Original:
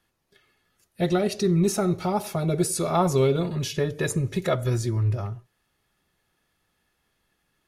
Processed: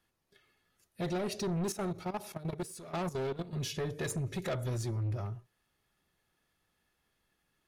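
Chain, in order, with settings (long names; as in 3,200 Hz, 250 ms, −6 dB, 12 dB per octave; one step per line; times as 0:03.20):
soft clipping −24.5 dBFS, distortion −9 dB
0:01.72–0:03.53: output level in coarse steps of 14 dB
level −5.5 dB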